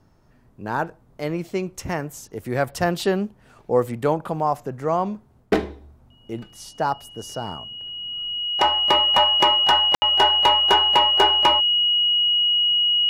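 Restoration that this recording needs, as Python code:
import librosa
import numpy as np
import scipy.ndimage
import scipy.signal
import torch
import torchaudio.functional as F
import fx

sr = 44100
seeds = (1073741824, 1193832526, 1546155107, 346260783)

y = fx.fix_declip(x, sr, threshold_db=-6.5)
y = fx.notch(y, sr, hz=2900.0, q=30.0)
y = fx.fix_ambience(y, sr, seeds[0], print_start_s=0.0, print_end_s=0.5, start_s=9.95, end_s=10.02)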